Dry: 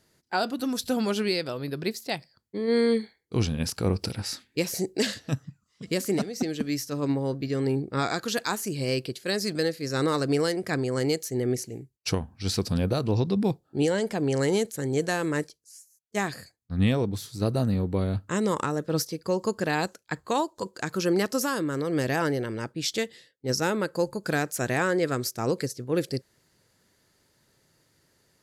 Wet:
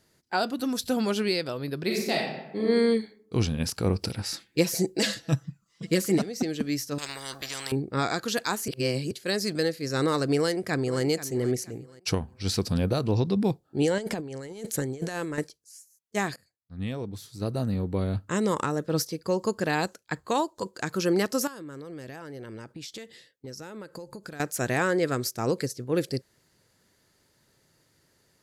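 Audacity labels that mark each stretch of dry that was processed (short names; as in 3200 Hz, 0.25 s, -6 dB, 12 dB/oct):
1.840000	2.620000	reverb throw, RT60 0.99 s, DRR -3 dB
4.330000	6.180000	comb 6 ms, depth 81%
6.980000	7.720000	spectral compressor 10:1
8.680000	9.110000	reverse
10.380000	11.030000	echo throw 0.48 s, feedback 30%, level -14 dB
13.980000	15.380000	negative-ratio compressor -31 dBFS, ratio -0.5
16.360000	18.300000	fade in, from -22 dB
21.470000	24.400000	compressor 16:1, threshold -36 dBFS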